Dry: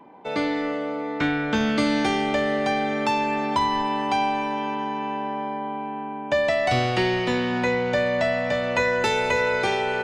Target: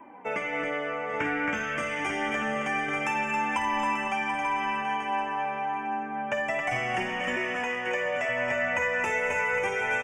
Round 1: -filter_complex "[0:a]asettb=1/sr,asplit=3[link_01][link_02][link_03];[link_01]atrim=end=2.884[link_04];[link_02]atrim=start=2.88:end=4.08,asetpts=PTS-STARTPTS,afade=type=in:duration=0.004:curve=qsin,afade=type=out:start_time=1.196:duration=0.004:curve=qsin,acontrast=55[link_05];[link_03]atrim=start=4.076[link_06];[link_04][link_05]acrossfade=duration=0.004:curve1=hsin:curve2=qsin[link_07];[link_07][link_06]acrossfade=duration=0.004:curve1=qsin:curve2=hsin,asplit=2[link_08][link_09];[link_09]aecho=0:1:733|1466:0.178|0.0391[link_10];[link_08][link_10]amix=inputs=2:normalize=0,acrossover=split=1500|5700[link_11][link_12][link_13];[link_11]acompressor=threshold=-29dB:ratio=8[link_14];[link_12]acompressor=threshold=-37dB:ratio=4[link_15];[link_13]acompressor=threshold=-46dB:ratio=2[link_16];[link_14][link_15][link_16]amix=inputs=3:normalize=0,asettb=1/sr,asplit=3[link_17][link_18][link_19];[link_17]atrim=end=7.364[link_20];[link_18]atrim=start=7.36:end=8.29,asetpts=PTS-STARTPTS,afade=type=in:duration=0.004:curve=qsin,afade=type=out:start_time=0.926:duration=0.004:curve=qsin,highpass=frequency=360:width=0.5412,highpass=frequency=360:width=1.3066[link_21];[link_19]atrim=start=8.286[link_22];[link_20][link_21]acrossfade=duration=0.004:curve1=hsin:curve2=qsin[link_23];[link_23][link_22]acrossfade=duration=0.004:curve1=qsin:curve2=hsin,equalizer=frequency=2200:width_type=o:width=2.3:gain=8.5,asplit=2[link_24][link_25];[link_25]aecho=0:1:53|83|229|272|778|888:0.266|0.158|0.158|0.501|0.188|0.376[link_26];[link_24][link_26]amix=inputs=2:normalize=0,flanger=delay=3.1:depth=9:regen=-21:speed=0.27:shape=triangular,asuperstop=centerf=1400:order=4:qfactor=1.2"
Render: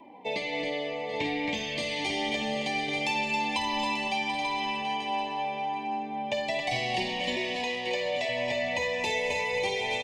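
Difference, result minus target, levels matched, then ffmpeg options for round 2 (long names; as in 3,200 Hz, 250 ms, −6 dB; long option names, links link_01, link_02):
4,000 Hz band +10.0 dB
-filter_complex "[0:a]asettb=1/sr,asplit=3[link_01][link_02][link_03];[link_01]atrim=end=2.884[link_04];[link_02]atrim=start=2.88:end=4.08,asetpts=PTS-STARTPTS,afade=type=in:duration=0.004:curve=qsin,afade=type=out:start_time=1.196:duration=0.004:curve=qsin,acontrast=55[link_05];[link_03]atrim=start=4.076[link_06];[link_04][link_05]acrossfade=duration=0.004:curve1=hsin:curve2=qsin[link_07];[link_07][link_06]acrossfade=duration=0.004:curve1=qsin:curve2=hsin,asplit=2[link_08][link_09];[link_09]aecho=0:1:733|1466:0.178|0.0391[link_10];[link_08][link_10]amix=inputs=2:normalize=0,acrossover=split=1500|5700[link_11][link_12][link_13];[link_11]acompressor=threshold=-29dB:ratio=8[link_14];[link_12]acompressor=threshold=-37dB:ratio=4[link_15];[link_13]acompressor=threshold=-46dB:ratio=2[link_16];[link_14][link_15][link_16]amix=inputs=3:normalize=0,asettb=1/sr,asplit=3[link_17][link_18][link_19];[link_17]atrim=end=7.364[link_20];[link_18]atrim=start=7.36:end=8.29,asetpts=PTS-STARTPTS,afade=type=in:duration=0.004:curve=qsin,afade=type=out:start_time=0.926:duration=0.004:curve=qsin,highpass=frequency=360:width=0.5412,highpass=frequency=360:width=1.3066[link_21];[link_19]atrim=start=8.286[link_22];[link_20][link_21]acrossfade=duration=0.004:curve1=hsin:curve2=qsin[link_23];[link_23][link_22]acrossfade=duration=0.004:curve1=qsin:curve2=hsin,equalizer=frequency=2200:width_type=o:width=2.3:gain=8.5,asplit=2[link_24][link_25];[link_25]aecho=0:1:53|83|229|272|778|888:0.266|0.158|0.158|0.501|0.188|0.376[link_26];[link_24][link_26]amix=inputs=2:normalize=0,flanger=delay=3.1:depth=9:regen=-21:speed=0.27:shape=triangular,asuperstop=centerf=4100:order=4:qfactor=1.2"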